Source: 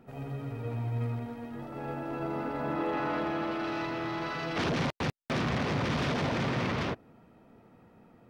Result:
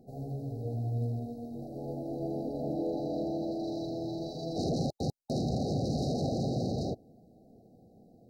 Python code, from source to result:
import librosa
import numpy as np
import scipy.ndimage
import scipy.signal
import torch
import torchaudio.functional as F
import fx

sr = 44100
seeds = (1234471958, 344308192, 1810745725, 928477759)

y = fx.brickwall_bandstop(x, sr, low_hz=820.0, high_hz=3800.0)